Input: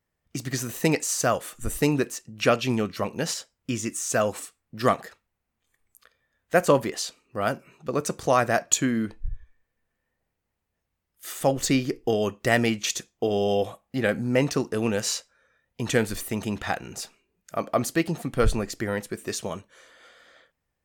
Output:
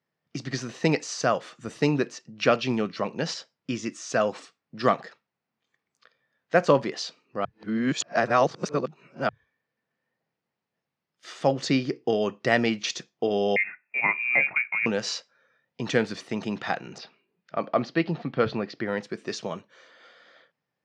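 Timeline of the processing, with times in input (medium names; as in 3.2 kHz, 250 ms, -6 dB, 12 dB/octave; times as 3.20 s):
7.45–9.29 s: reverse
13.56–14.86 s: frequency inversion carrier 2.6 kHz
16.98–18.88 s: low-pass 4.4 kHz 24 dB/octave
whole clip: elliptic band-pass 140–5200 Hz, stop band 60 dB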